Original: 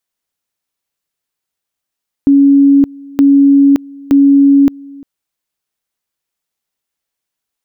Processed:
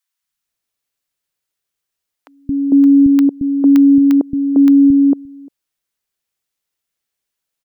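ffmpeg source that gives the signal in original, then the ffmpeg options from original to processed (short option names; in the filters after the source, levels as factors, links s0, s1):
-f lavfi -i "aevalsrc='pow(10,(-3.5-25*gte(mod(t,0.92),0.57))/20)*sin(2*PI*279*t)':d=2.76:s=44100"
-filter_complex "[0:a]acrossover=split=230|860[s0][s1][s2];[s0]adelay=220[s3];[s1]adelay=450[s4];[s3][s4][s2]amix=inputs=3:normalize=0"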